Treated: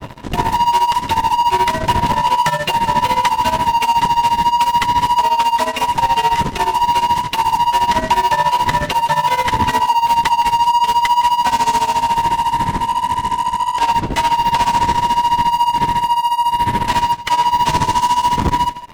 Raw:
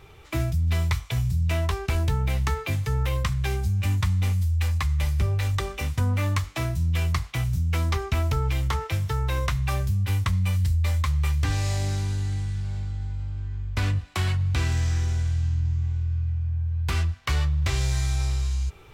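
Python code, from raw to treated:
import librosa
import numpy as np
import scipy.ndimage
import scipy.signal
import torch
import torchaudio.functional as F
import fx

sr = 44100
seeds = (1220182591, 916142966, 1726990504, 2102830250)

p1 = fx.band_invert(x, sr, width_hz=1000)
p2 = fx.dmg_wind(p1, sr, seeds[0], corner_hz=220.0, level_db=-35.0)
p3 = fx.fuzz(p2, sr, gain_db=35.0, gate_db=-41.0)
p4 = p2 + (p3 * 10.0 ** (-9.0 / 20.0))
p5 = fx.granulator(p4, sr, seeds[1], grain_ms=92.0, per_s=14.0, spray_ms=15.0, spread_st=0)
p6 = p5 + fx.echo_single(p5, sr, ms=161, db=-16.0, dry=0)
p7 = fx.transformer_sat(p6, sr, knee_hz=260.0)
y = p7 * 10.0 ** (6.0 / 20.0)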